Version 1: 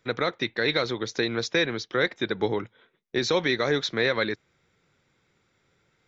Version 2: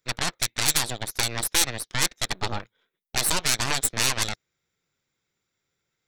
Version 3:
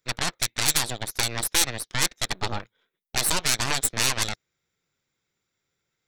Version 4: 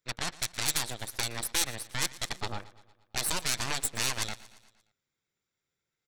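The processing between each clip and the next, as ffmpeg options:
ffmpeg -i in.wav -af "aeval=exprs='0.266*(cos(1*acos(clip(val(0)/0.266,-1,1)))-cos(1*PI/2))+0.119*(cos(3*acos(clip(val(0)/0.266,-1,1)))-cos(3*PI/2))+0.00596*(cos(5*acos(clip(val(0)/0.266,-1,1)))-cos(5*PI/2))+0.0668*(cos(6*acos(clip(val(0)/0.266,-1,1)))-cos(6*PI/2))':channel_layout=same,aemphasis=mode=production:type=75fm,volume=-1dB" out.wav
ffmpeg -i in.wav -af anull out.wav
ffmpeg -i in.wav -af "aecho=1:1:116|232|348|464|580:0.112|0.064|0.0365|0.0208|0.0118,volume=-7dB" out.wav

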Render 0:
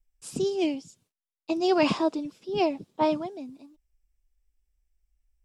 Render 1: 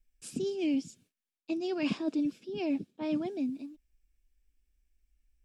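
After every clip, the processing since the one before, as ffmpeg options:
ffmpeg -i in.wav -af "bandreject=frequency=2000:width=7.2,areverse,acompressor=threshold=-34dB:ratio=5,areverse,equalizer=frequency=250:width_type=o:width=1:gain=9,equalizer=frequency=1000:width_type=o:width=1:gain=-9,equalizer=frequency=2000:width_type=o:width=1:gain=9" out.wav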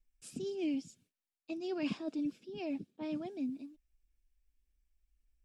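ffmpeg -i in.wav -af "aphaser=in_gain=1:out_gain=1:delay=1.6:decay=0.23:speed=1.7:type=sinusoidal,volume=-6dB" out.wav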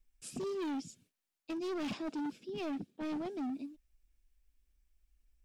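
ffmpeg -i in.wav -af "asoftclip=type=hard:threshold=-39dB,volume=4dB" out.wav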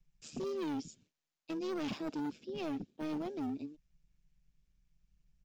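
ffmpeg -i in.wav -filter_complex "[0:a]aresample=16000,aresample=44100,acrossover=split=240|1300|1500[link_01][link_02][link_03][link_04];[link_03]acrusher=samples=9:mix=1:aa=0.000001:lfo=1:lforange=5.4:lforate=0.41[link_05];[link_01][link_02][link_05][link_04]amix=inputs=4:normalize=0,tremolo=f=150:d=0.462,volume=2dB" out.wav

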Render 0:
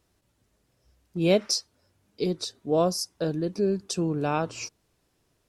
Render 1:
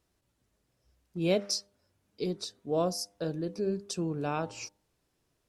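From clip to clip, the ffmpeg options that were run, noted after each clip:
ffmpeg -i in.wav -af "bandreject=frequency=100.4:width_type=h:width=4,bandreject=frequency=200.8:width_type=h:width=4,bandreject=frequency=301.2:width_type=h:width=4,bandreject=frequency=401.6:width_type=h:width=4,bandreject=frequency=502:width_type=h:width=4,bandreject=frequency=602.4:width_type=h:width=4,bandreject=frequency=702.8:width_type=h:width=4,bandreject=frequency=803.2:width_type=h:width=4,bandreject=frequency=903.6:width_type=h:width=4,volume=-5.5dB" out.wav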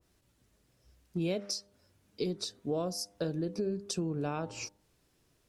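ffmpeg -i in.wav -af "equalizer=frequency=810:width_type=o:width=1.5:gain=-3,acompressor=threshold=-36dB:ratio=6,adynamicequalizer=threshold=0.00141:dfrequency=1500:dqfactor=0.7:tfrequency=1500:tqfactor=0.7:attack=5:release=100:ratio=0.375:range=2.5:mode=cutabove:tftype=highshelf,volume=6dB" out.wav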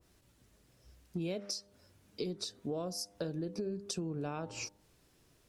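ffmpeg -i in.wav -af "acompressor=threshold=-44dB:ratio=2,volume=3.5dB" out.wav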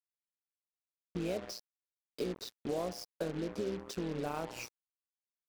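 ffmpeg -i in.wav -filter_complex "[0:a]tremolo=f=120:d=0.667,asplit=2[link_01][link_02];[link_02]highpass=frequency=720:poles=1,volume=11dB,asoftclip=type=tanh:threshold=-26.5dB[link_03];[link_01][link_03]amix=inputs=2:normalize=0,lowpass=frequency=1200:poles=1,volume=-6dB,acrusher=bits=7:mix=0:aa=0.5,volume=4.5dB" out.wav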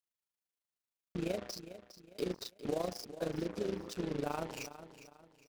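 ffmpeg -i in.wav -af "tremolo=f=26:d=0.75,aecho=1:1:407|814|1221:0.211|0.074|0.0259,volume=3dB" out.wav

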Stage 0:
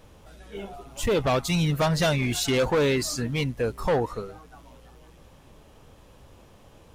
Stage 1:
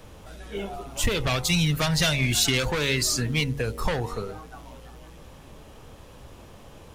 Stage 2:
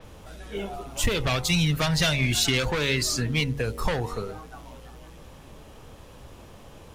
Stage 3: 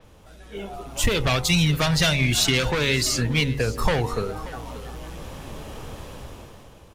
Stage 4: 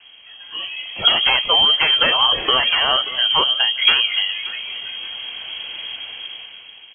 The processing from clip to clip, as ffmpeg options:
ffmpeg -i in.wav -filter_complex "[0:a]bandreject=frequency=46.79:width_type=h:width=4,bandreject=frequency=93.58:width_type=h:width=4,bandreject=frequency=140.37:width_type=h:width=4,bandreject=frequency=187.16:width_type=h:width=4,bandreject=frequency=233.95:width_type=h:width=4,bandreject=frequency=280.74:width_type=h:width=4,bandreject=frequency=327.53:width_type=h:width=4,bandreject=frequency=374.32:width_type=h:width=4,bandreject=frequency=421.11:width_type=h:width=4,bandreject=frequency=467.9:width_type=h:width=4,bandreject=frequency=514.69:width_type=h:width=4,bandreject=frequency=561.48:width_type=h:width=4,bandreject=frequency=608.27:width_type=h:width=4,bandreject=frequency=655.06:width_type=h:width=4,bandreject=frequency=701.85:width_type=h:width=4,bandreject=frequency=748.64:width_type=h:width=4,bandreject=frequency=795.43:width_type=h:width=4,bandreject=frequency=842.22:width_type=h:width=4,bandreject=frequency=889.01:width_type=h:width=4,bandreject=frequency=935.8:width_type=h:width=4,bandreject=frequency=982.59:width_type=h:width=4,bandreject=frequency=1029.38:width_type=h:width=4,acrossover=split=130|1700[link_01][link_02][link_03];[link_02]acompressor=threshold=-34dB:ratio=6[link_04];[link_01][link_04][link_03]amix=inputs=3:normalize=0,volume=6dB" out.wav
ffmpeg -i in.wav -af "adynamicequalizer=threshold=0.0112:dfrequency=5800:dqfactor=0.7:tfrequency=5800:tqfactor=0.7:attack=5:release=100:ratio=0.375:range=2:mode=cutabove:tftype=highshelf" out.wav
ffmpeg -i in.wav -af "dynaudnorm=framelen=240:gausssize=7:maxgain=15dB,aecho=1:1:582:0.15,volume=-5dB" out.wav
ffmpeg -i in.wav -af "lowpass=frequency=2800:width_type=q:width=0.5098,lowpass=frequency=2800:width_type=q:width=0.6013,lowpass=frequency=2800:width_type=q:width=0.9,lowpass=frequency=2800:width_type=q:width=2.563,afreqshift=-3300,volume=5.5dB" out.wav

